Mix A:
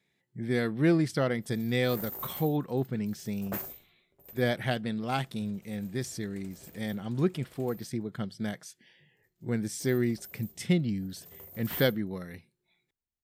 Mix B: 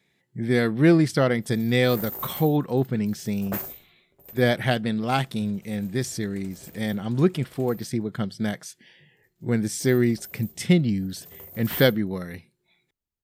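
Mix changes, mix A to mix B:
speech +7.0 dB; background +5.0 dB

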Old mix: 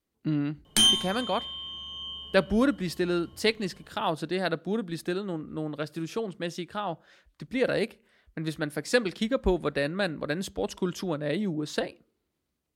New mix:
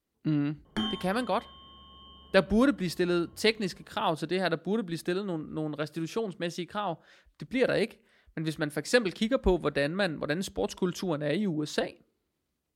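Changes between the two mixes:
background: add Savitzky-Golay filter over 41 samples; reverb: off

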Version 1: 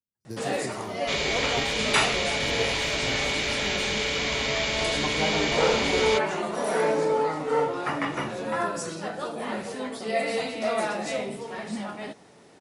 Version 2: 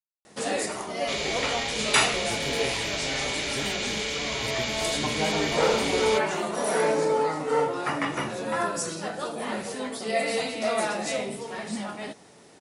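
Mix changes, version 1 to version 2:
speech: entry +2.00 s; second sound -5.0 dB; master: add treble shelf 5 kHz +7.5 dB

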